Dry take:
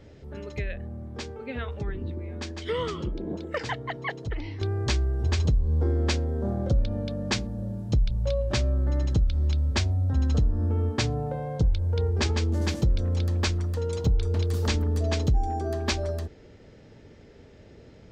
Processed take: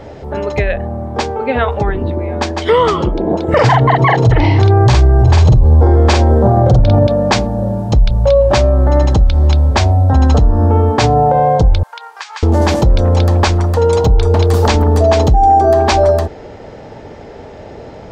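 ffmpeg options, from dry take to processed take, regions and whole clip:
-filter_complex "[0:a]asettb=1/sr,asplit=3[a][b][c];[a]atrim=end=3.484[d];[b]atrim=start=3.48:end=7.07,asetpts=PTS-STARTPTS,afade=t=in:d=0.004:c=qsin,afade=t=out:st=3.586:d=0.004:c=qsin,equalizer=f=120:t=o:w=0.61:g=15,acontrast=31,asplit=2[e][f];[f]adelay=48,volume=-3.5dB[g];[e][g]amix=inputs=2:normalize=0,atrim=end_sample=158319[h];[c]atrim=start=7.066[i];[d][h]acrossfade=d=0.004:c1=hsin:c2=qsin[j];[j][i]acrossfade=d=0.004:c1=qsin:c2=hsin,asettb=1/sr,asplit=3[k][l][m];[k]atrim=end=11.834[n];[l]atrim=start=11.83:end=12.43,asetpts=PTS-STARTPTS,afade=t=in:d=0.004:c=qsin,afade=t=out:st=0.596:d=0.004:c=qsin,highpass=f=1.2k:w=0.5412,highpass=f=1.2k:w=1.3066,acompressor=threshold=-42dB:ratio=8:attack=3.2:release=140:knee=1:detection=peak[o];[m]atrim=start=12.426[p];[n][o]acrossfade=d=0.004:c1=hsin:c2=qsin[q];[q][p]acrossfade=d=0.004:c1=qsin:c2=hsin,equalizer=f=800:t=o:w=1.3:g=14.5,alimiter=level_in=15dB:limit=-1dB:release=50:level=0:latency=1,volume=-1dB"

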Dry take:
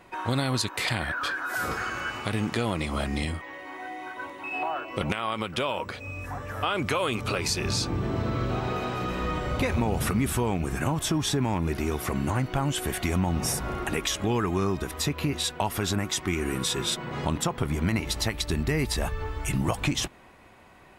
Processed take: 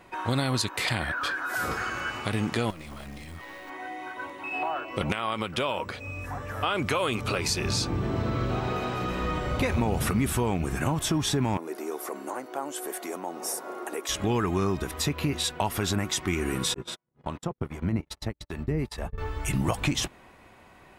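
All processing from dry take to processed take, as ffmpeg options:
-filter_complex "[0:a]asettb=1/sr,asplit=3[a][b][c];[a]atrim=end=2.704[d];[b]atrim=start=2.7:end=3.7,asetpts=PTS-STARTPTS,afade=t=in:d=0.004:c=qsin,afade=t=out:st=0.996:d=0.004:c=qsin,acompressor=threshold=-34dB:ratio=5:attack=3.2:release=140:knee=1:detection=peak,acrusher=bits=4:mode=log:mix=0:aa=0.000001,aeval=exprs='clip(val(0),-1,0.00631)':c=same[e];[c]atrim=start=3.696[f];[d][e]acrossfade=d=0.004:c1=hsin:c2=qsin[g];[g][f]acrossfade=d=0.004:c1=qsin:c2=hsin,asettb=1/sr,asplit=3[h][i][j];[h]atrim=end=11.574[k];[i]atrim=start=11.57:end=14.09,asetpts=PTS-STARTPTS,afade=t=in:d=0.004:c=qsin,afade=t=out:st=2.516:d=0.004:c=qsin,highpass=f=350:w=0.5412,highpass=f=350:w=1.3066,equalizer=f=2.8k:t=o:w=1.9:g=-12[l];[j]atrim=start=14.086[m];[k][l]acrossfade=d=0.004:c1=hsin:c2=qsin[n];[n][m]acrossfade=d=0.004:c1=qsin:c2=hsin,asettb=1/sr,asplit=3[o][p][q];[o]atrim=end=16.744[r];[p]atrim=start=16.74:end=19.18,asetpts=PTS-STARTPTS,afade=t=in:d=0.004:c=qsin,afade=t=out:st=2.436:d=0.004:c=qsin,agate=range=-47dB:threshold=-29dB:ratio=16:release=100:detection=peak,highshelf=f=2.5k:g=-11,acrossover=split=560[s][t];[s]aeval=exprs='val(0)*(1-0.7/2+0.7/2*cos(2*PI*2.5*n/s))':c=same[u];[t]aeval=exprs='val(0)*(1-0.7/2-0.7/2*cos(2*PI*2.5*n/s))':c=same[v];[u][v]amix=inputs=2:normalize=0[w];[q]atrim=start=19.176[x];[r][w]acrossfade=d=0.004:c1=hsin:c2=qsin[y];[y][x]acrossfade=d=0.004:c1=qsin:c2=hsin"

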